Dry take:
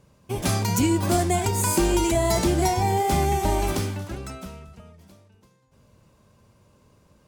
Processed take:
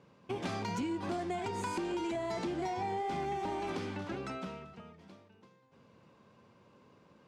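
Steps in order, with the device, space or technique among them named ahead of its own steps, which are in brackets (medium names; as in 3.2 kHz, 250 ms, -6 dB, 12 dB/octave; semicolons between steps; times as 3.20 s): AM radio (band-pass 190–3500 Hz; compression 5:1, threshold -33 dBFS, peak gain reduction 13.5 dB; saturation -26.5 dBFS, distortion -22 dB); band-stop 610 Hz, Q 12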